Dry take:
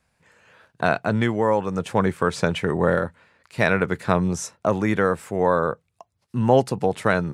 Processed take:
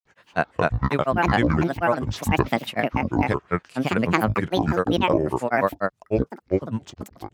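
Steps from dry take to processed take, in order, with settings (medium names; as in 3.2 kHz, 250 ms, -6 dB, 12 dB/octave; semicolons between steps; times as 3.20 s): fade out at the end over 1.22 s; granulator, spray 521 ms, pitch spread up and down by 12 st; trim +1 dB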